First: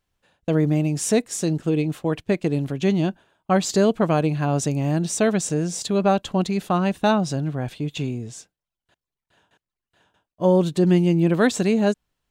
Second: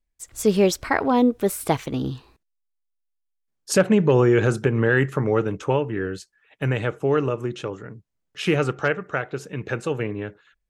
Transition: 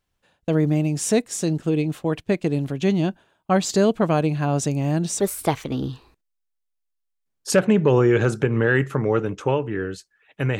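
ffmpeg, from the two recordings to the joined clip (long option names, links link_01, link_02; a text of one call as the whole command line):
ffmpeg -i cue0.wav -i cue1.wav -filter_complex "[0:a]apad=whole_dur=10.59,atrim=end=10.59,atrim=end=5.202[link_01];[1:a]atrim=start=1.418:end=6.81[link_02];[link_01][link_02]acrossfade=duration=0.004:curve1=hsin:curve2=hsin" out.wav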